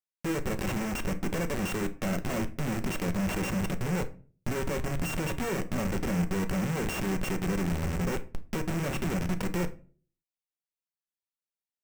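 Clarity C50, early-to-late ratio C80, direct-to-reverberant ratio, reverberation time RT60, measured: 16.0 dB, 21.5 dB, 8.0 dB, 0.40 s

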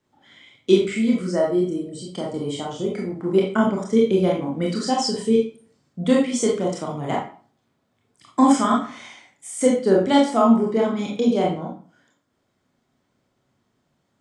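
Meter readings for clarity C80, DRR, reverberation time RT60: 10.0 dB, −2.5 dB, 0.45 s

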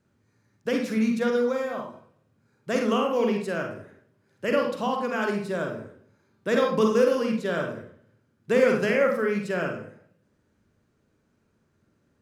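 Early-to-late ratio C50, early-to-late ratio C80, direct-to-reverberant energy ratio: 5.0 dB, 9.5 dB, 1.5 dB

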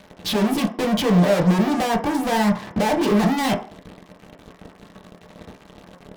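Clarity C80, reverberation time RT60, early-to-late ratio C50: 15.5 dB, 0.45 s, 11.0 dB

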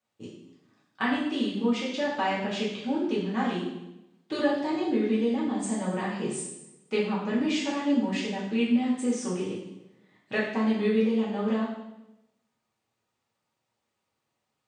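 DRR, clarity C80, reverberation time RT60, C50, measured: −7.5 dB, 5.5 dB, 0.95 s, 2.5 dB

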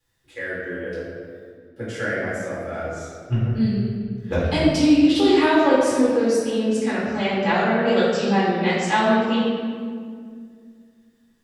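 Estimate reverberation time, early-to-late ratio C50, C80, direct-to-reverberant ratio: 2.1 s, −1.0 dB, 1.0 dB, −8.5 dB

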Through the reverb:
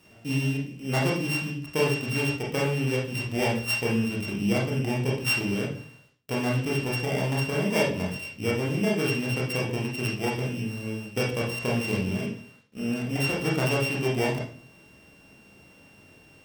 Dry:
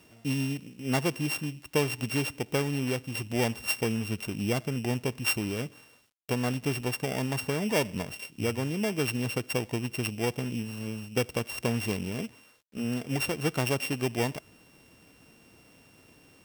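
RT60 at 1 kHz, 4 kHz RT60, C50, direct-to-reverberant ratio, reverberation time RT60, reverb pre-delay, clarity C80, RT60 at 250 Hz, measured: 0.45 s, 0.40 s, 4.0 dB, −4.0 dB, 0.50 s, 23 ms, 10.0 dB, 0.55 s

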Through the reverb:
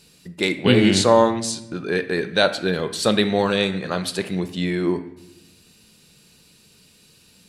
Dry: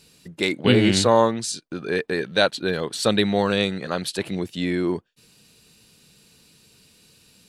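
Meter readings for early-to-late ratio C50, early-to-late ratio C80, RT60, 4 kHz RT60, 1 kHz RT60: 12.5 dB, 15.0 dB, 0.90 s, 0.60 s, 0.85 s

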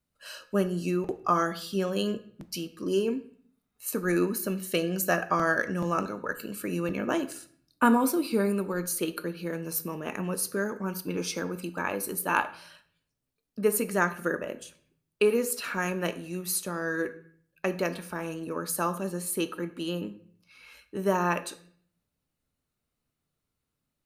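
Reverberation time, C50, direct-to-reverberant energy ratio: 0.55 s, 15.0 dB, 11.0 dB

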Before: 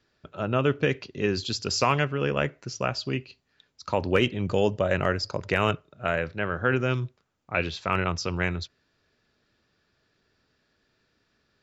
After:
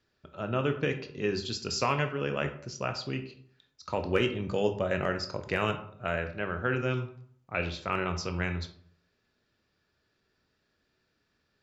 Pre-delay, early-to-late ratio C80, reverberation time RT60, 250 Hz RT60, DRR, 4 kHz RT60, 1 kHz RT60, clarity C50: 16 ms, 14.0 dB, 0.60 s, 0.70 s, 6.5 dB, 0.35 s, 0.55 s, 10.5 dB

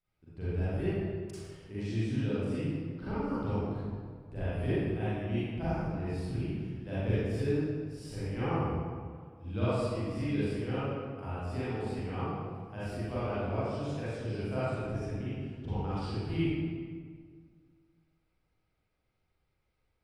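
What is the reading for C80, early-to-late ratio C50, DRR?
−3.0 dB, −7.5 dB, −12.5 dB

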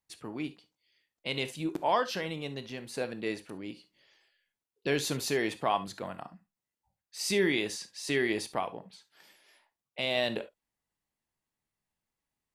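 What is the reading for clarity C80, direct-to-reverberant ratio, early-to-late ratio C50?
40.0 dB, 11.0 dB, 15.5 dB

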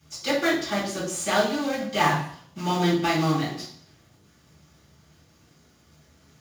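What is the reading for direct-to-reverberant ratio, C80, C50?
−10.0 dB, 8.0 dB, 4.5 dB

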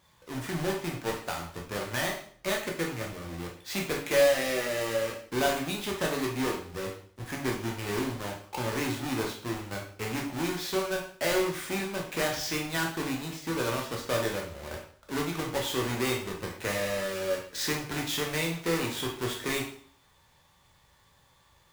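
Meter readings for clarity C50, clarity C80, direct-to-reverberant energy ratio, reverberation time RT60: 6.0 dB, 10.0 dB, −1.0 dB, 0.55 s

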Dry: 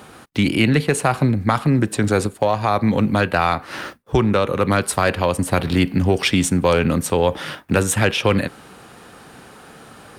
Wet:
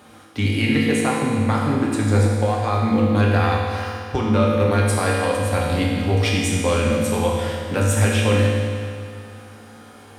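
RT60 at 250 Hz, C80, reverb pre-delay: 2.3 s, 1.0 dB, 4 ms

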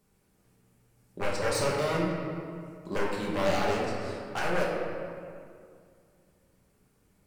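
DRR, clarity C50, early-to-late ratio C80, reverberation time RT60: −4.5 dB, 0.5 dB, 2.5 dB, 2.2 s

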